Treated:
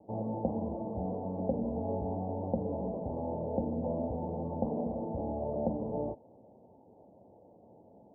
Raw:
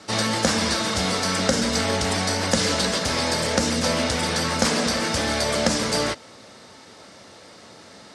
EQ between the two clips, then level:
Butterworth low-pass 870 Hz 72 dB per octave
−9.0 dB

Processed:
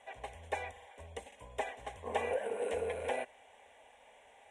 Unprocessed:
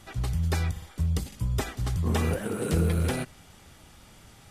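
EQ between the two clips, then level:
elliptic band-pass filter 400–9,500 Hz, stop band 40 dB
spectral tilt −3.5 dB per octave
phaser with its sweep stopped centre 1,300 Hz, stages 6
+1.0 dB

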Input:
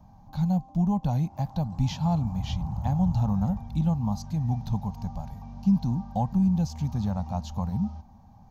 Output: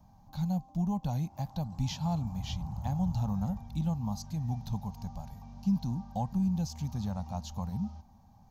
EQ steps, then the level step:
high-shelf EQ 3,300 Hz +8.5 dB
−6.5 dB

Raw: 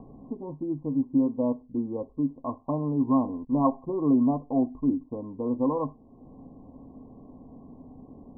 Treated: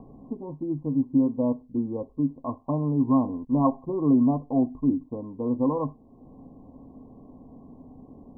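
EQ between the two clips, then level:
dynamic equaliser 120 Hz, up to +5 dB, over −39 dBFS, Q 0.79
0.0 dB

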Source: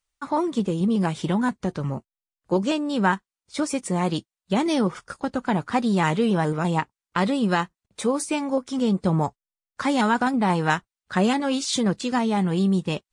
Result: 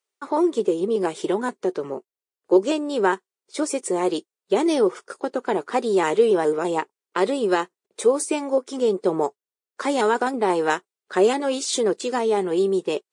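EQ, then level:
dynamic equaliser 8,300 Hz, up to +6 dB, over −51 dBFS, Q 1.3
high-pass with resonance 400 Hz, resonance Q 4.9
−2.0 dB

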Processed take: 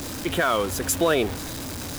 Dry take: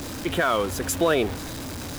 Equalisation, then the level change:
high-shelf EQ 5,000 Hz +4.5 dB
0.0 dB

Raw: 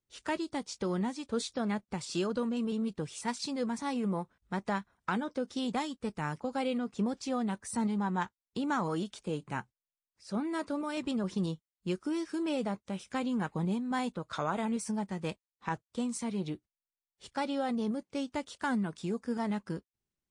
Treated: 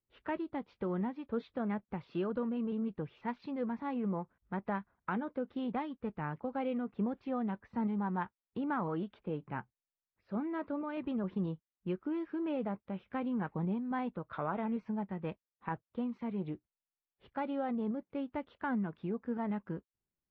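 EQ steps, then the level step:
Bessel low-pass filter 1,800 Hz, order 6
−2.5 dB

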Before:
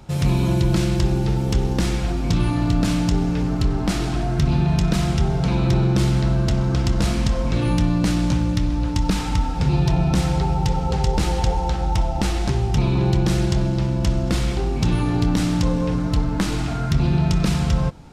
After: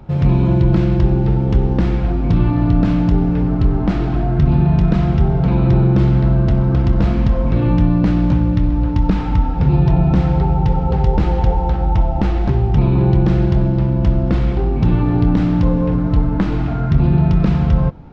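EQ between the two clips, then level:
head-to-tape spacing loss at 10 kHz 39 dB
+6.0 dB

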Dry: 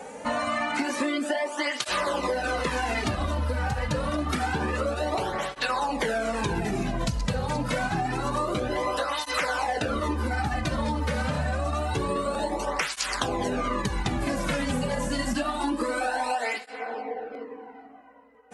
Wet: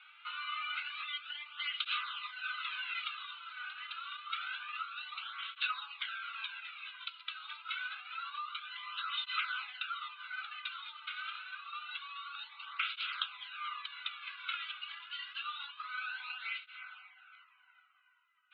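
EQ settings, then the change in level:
Chebyshev band-pass filter 1,300–3,800 Hz, order 4
phaser with its sweep stopped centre 1,800 Hz, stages 6
−1.0 dB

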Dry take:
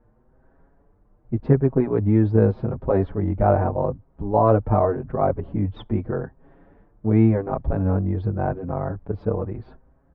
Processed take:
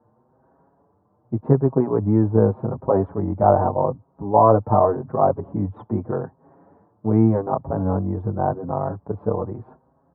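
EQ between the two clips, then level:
high-pass filter 95 Hz 24 dB per octave
low-pass with resonance 1,000 Hz, resonance Q 2.2
high-frequency loss of the air 81 metres
0.0 dB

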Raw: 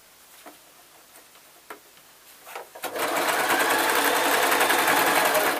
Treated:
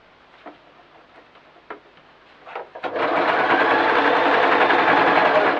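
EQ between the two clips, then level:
low-pass filter 3,900 Hz 24 dB per octave
high-shelf EQ 2,800 Hz −11 dB
+7.0 dB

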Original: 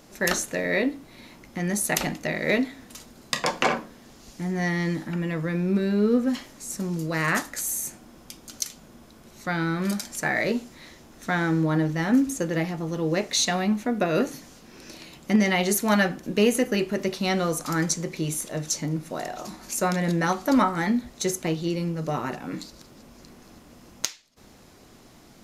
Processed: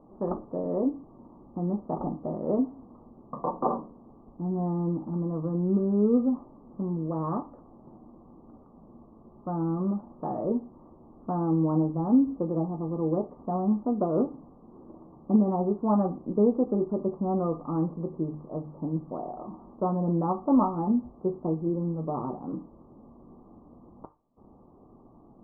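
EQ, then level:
Chebyshev low-pass with heavy ripple 1,200 Hz, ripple 3 dB
high-frequency loss of the air 280 metres
mains-hum notches 50/100/150 Hz
0.0 dB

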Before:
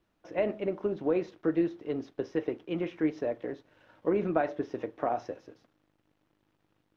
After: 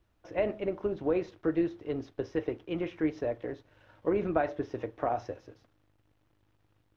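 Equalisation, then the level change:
low shelf with overshoot 130 Hz +8.5 dB, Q 1.5
0.0 dB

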